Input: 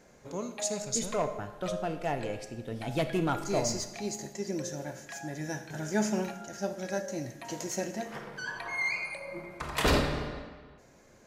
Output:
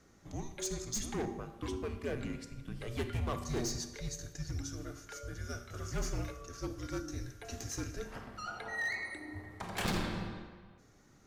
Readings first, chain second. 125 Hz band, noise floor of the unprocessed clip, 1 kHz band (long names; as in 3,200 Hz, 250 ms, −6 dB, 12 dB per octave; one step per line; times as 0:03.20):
−2.5 dB, −58 dBFS, −8.5 dB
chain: gain into a clipping stage and back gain 26 dB
frequency shifter −250 Hz
level −4.5 dB